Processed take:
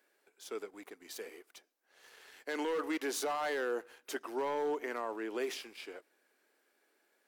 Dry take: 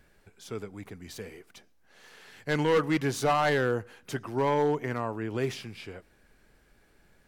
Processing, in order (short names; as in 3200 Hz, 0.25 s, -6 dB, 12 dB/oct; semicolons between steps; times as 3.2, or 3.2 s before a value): inverse Chebyshev high-pass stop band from 150 Hz, stop band 40 dB; high shelf 11000 Hz +7 dB; sample leveller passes 1; limiter -21 dBFS, peak gain reduction 8 dB; gain -6.5 dB